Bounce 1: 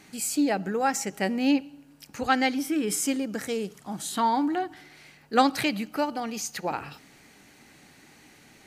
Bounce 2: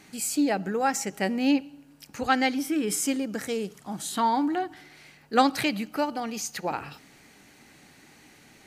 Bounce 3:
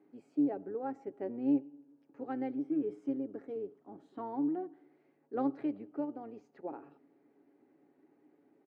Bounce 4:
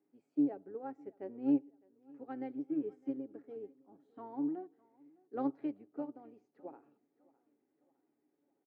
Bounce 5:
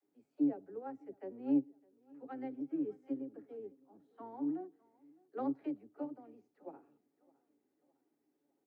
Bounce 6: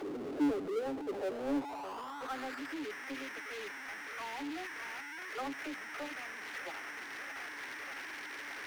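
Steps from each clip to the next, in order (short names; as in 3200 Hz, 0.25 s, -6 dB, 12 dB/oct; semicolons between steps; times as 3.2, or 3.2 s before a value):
nothing audible
octaver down 1 oct, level -5 dB; ladder band-pass 390 Hz, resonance 50%; comb 7.2 ms, depth 34%
feedback echo 0.608 s, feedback 47%, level -18 dB; upward expander 1.5:1, over -52 dBFS
dispersion lows, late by 50 ms, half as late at 310 Hz; gain -1 dB
delta modulation 32 kbps, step -47 dBFS; band-pass sweep 400 Hz -> 1900 Hz, 0.89–2.78; power-law curve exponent 0.5; gain +4 dB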